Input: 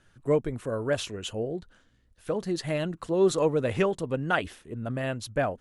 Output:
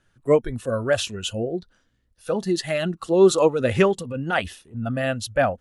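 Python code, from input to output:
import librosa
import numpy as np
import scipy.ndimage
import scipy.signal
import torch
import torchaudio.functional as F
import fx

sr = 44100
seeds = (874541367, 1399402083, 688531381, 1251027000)

y = fx.transient(x, sr, attack_db=-12, sustain_db=0, at=(3.87, 4.77))
y = fx.noise_reduce_blind(y, sr, reduce_db=11)
y = y * librosa.db_to_amplitude(7.5)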